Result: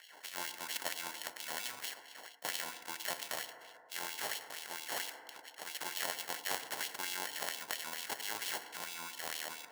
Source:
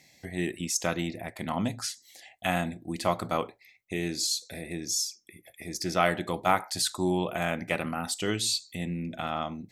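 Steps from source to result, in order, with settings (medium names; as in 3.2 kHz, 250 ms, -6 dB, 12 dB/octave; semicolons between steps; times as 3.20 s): treble shelf 11 kHz +8.5 dB; sample-and-hold 36×; LFO high-pass sine 4.4 Hz 830–3200 Hz; FDN reverb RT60 1.6 s, low-frequency decay 1.1×, high-frequency decay 0.3×, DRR 16.5 dB; spectrum-flattening compressor 2:1; trim -6 dB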